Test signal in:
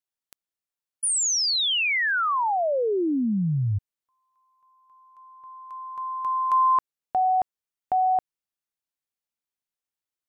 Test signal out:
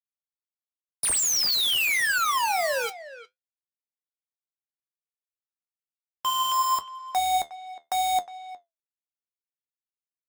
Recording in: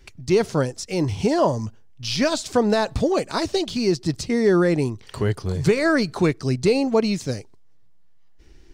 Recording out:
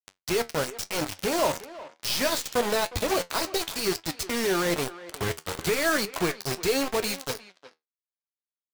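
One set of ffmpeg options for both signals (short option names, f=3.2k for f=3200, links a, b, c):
-filter_complex "[0:a]agate=range=-33dB:threshold=-42dB:ratio=3:release=199:detection=peak,equalizer=f=180:t=o:w=2.4:g=-11,asplit=2[a][b];[b]acompressor=threshold=-40dB:ratio=4:attack=18:release=47:knee=1:detection=peak,volume=0.5dB[c];[a][c]amix=inputs=2:normalize=0,acrusher=bits=3:mix=0:aa=0.000001,flanger=delay=9.5:depth=3.7:regen=63:speed=1:shape=triangular,asplit=2[d][e];[e]adelay=360,highpass=300,lowpass=3.4k,asoftclip=type=hard:threshold=-21dB,volume=-15dB[f];[d][f]amix=inputs=2:normalize=0" -ar 44100 -c:a aac -b:a 128k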